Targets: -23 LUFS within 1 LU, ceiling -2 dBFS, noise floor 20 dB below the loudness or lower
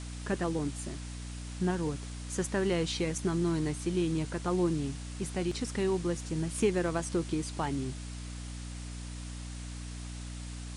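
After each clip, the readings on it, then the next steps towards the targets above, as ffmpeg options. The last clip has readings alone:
hum 60 Hz; harmonics up to 300 Hz; hum level -38 dBFS; noise floor -41 dBFS; noise floor target -54 dBFS; loudness -33.5 LUFS; peak -15.5 dBFS; loudness target -23.0 LUFS
-> -af "bandreject=f=60:t=h:w=4,bandreject=f=120:t=h:w=4,bandreject=f=180:t=h:w=4,bandreject=f=240:t=h:w=4,bandreject=f=300:t=h:w=4"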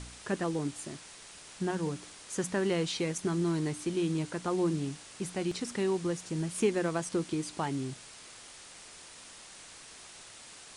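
hum none; noise floor -51 dBFS; noise floor target -53 dBFS
-> -af "afftdn=nr=6:nf=-51"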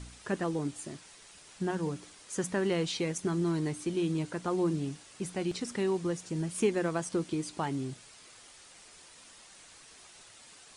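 noise floor -55 dBFS; loudness -33.0 LUFS; peak -16.5 dBFS; loudness target -23.0 LUFS
-> -af "volume=10dB"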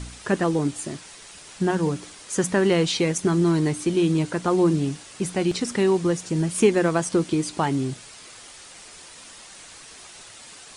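loudness -23.0 LUFS; peak -6.5 dBFS; noise floor -45 dBFS

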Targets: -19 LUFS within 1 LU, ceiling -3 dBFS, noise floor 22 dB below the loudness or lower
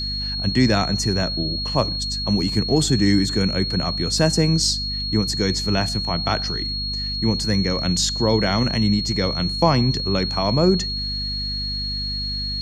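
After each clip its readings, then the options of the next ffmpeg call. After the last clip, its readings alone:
hum 50 Hz; harmonics up to 250 Hz; hum level -28 dBFS; steady tone 4300 Hz; tone level -25 dBFS; loudness -20.5 LUFS; peak -2.0 dBFS; loudness target -19.0 LUFS
-> -af "bandreject=f=50:t=h:w=4,bandreject=f=100:t=h:w=4,bandreject=f=150:t=h:w=4,bandreject=f=200:t=h:w=4,bandreject=f=250:t=h:w=4"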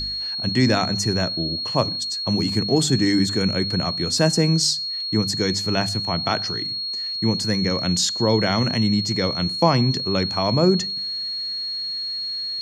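hum none; steady tone 4300 Hz; tone level -25 dBFS
-> -af "bandreject=f=4.3k:w=30"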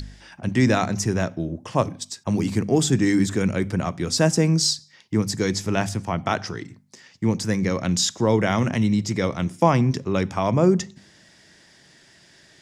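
steady tone none; loudness -22.5 LUFS; peak -3.0 dBFS; loudness target -19.0 LUFS
-> -af "volume=3.5dB,alimiter=limit=-3dB:level=0:latency=1"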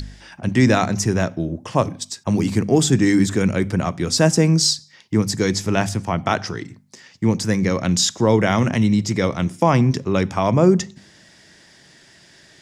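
loudness -19.0 LUFS; peak -3.0 dBFS; noise floor -50 dBFS

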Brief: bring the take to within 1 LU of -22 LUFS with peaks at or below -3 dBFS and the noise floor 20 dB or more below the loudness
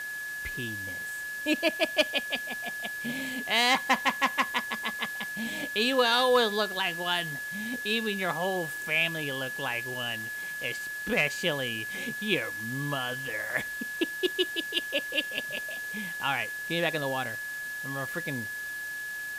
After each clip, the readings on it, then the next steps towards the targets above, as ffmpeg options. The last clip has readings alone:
steady tone 1700 Hz; tone level -34 dBFS; noise floor -37 dBFS; noise floor target -49 dBFS; loudness -29.0 LUFS; peak -12.0 dBFS; loudness target -22.0 LUFS
-> -af "bandreject=f=1.7k:w=30"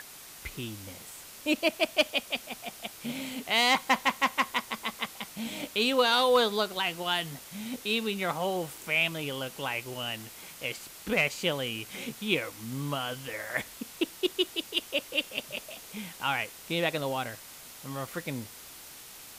steady tone none; noise floor -48 dBFS; noise floor target -50 dBFS
-> -af "afftdn=nr=6:nf=-48"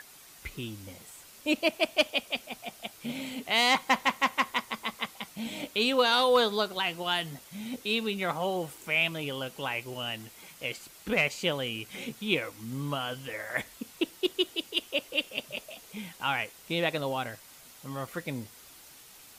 noise floor -53 dBFS; loudness -30.0 LUFS; peak -13.0 dBFS; loudness target -22.0 LUFS
-> -af "volume=8dB"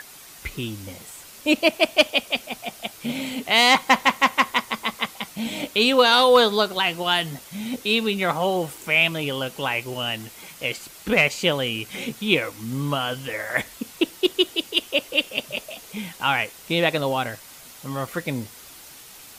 loudness -22.0 LUFS; peak -5.0 dBFS; noise floor -45 dBFS

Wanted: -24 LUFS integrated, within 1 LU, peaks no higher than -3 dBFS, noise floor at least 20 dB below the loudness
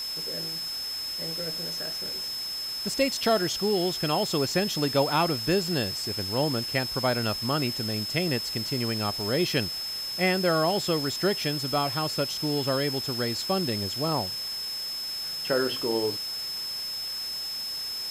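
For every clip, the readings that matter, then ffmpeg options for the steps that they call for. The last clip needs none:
steady tone 5200 Hz; tone level -31 dBFS; noise floor -34 dBFS; noise floor target -47 dBFS; loudness -27.0 LUFS; peak -11.5 dBFS; loudness target -24.0 LUFS
-> -af "bandreject=f=5.2k:w=30"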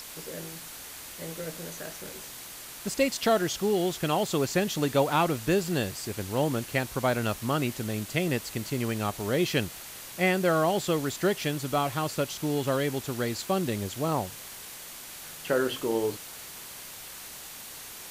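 steady tone none; noise floor -43 dBFS; noise floor target -49 dBFS
-> -af "afftdn=nr=6:nf=-43"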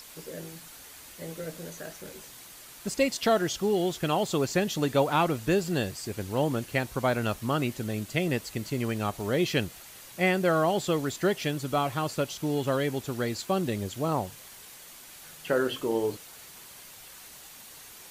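noise floor -48 dBFS; noise floor target -49 dBFS
-> -af "afftdn=nr=6:nf=-48"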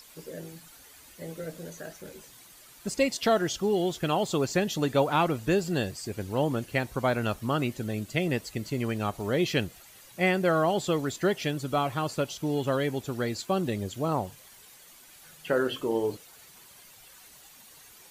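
noise floor -53 dBFS; loudness -28.5 LUFS; peak -12.5 dBFS; loudness target -24.0 LUFS
-> -af "volume=4.5dB"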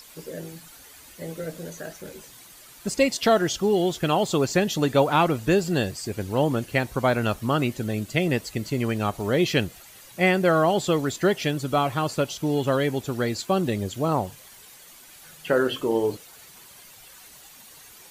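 loudness -24.0 LUFS; peak -8.0 dBFS; noise floor -48 dBFS

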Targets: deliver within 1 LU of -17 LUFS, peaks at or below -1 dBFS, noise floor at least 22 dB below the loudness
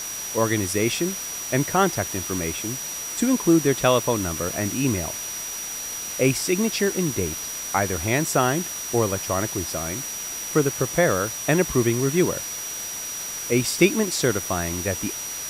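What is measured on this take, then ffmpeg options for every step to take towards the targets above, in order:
steady tone 5800 Hz; tone level -31 dBFS; noise floor -32 dBFS; noise floor target -46 dBFS; loudness -23.5 LUFS; peak -4.0 dBFS; loudness target -17.0 LUFS
-> -af "bandreject=f=5.8k:w=30"
-af "afftdn=nr=14:nf=-32"
-af "volume=6.5dB,alimiter=limit=-1dB:level=0:latency=1"

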